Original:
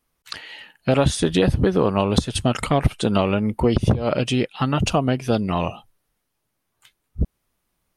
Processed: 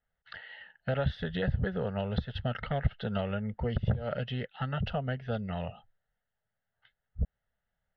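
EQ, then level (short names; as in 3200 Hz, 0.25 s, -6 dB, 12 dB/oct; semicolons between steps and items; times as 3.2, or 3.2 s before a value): dynamic EQ 780 Hz, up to -6 dB, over -32 dBFS, Q 1.1; ladder low-pass 2800 Hz, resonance 35%; fixed phaser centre 1600 Hz, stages 8; 0.0 dB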